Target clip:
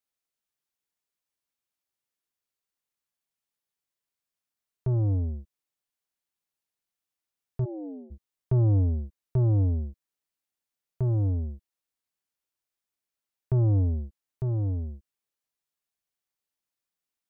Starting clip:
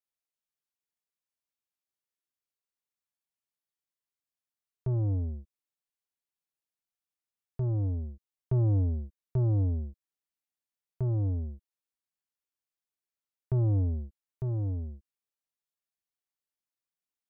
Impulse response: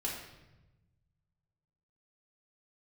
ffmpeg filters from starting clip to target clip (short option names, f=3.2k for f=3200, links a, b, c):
-filter_complex "[0:a]asplit=3[a][b][c];[a]afade=t=out:st=7.64:d=0.02[d];[b]asuperpass=centerf=460:order=20:qfactor=0.71,afade=t=in:st=7.64:d=0.02,afade=t=out:st=8.1:d=0.02[e];[c]afade=t=in:st=8.1:d=0.02[f];[d][e][f]amix=inputs=3:normalize=0,volume=3.5dB"